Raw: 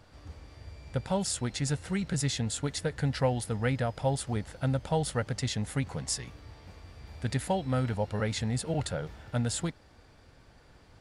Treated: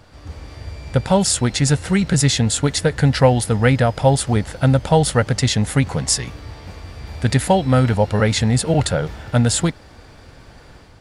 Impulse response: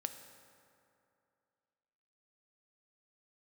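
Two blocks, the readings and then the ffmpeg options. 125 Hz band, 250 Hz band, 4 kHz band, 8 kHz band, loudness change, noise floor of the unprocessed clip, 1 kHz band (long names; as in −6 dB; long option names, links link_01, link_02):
+14.0 dB, +14.0 dB, +14.0 dB, +14.0 dB, +14.0 dB, −58 dBFS, +14.0 dB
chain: -af "dynaudnorm=framelen=120:gausssize=5:maxgain=5dB,volume=9dB"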